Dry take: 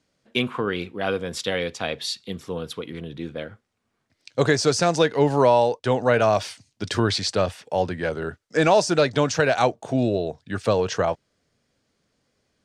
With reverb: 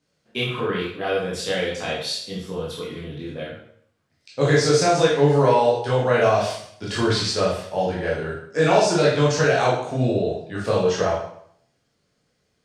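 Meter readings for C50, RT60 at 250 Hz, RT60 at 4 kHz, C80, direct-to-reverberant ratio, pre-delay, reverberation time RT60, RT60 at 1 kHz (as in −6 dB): 2.5 dB, 0.65 s, 0.60 s, 6.5 dB, −6.5 dB, 6 ms, 0.65 s, 0.65 s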